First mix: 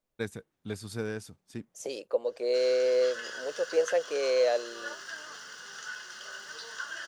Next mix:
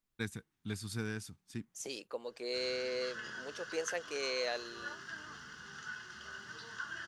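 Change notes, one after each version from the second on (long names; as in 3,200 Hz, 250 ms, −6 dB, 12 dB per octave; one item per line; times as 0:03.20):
background: add spectral tilt −4 dB per octave
master: add parametric band 550 Hz −15 dB 0.94 octaves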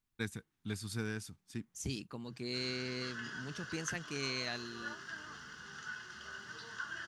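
second voice: remove high-pass with resonance 520 Hz, resonance Q 5.2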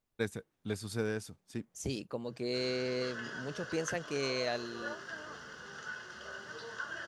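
master: add parametric band 550 Hz +15 dB 0.94 octaves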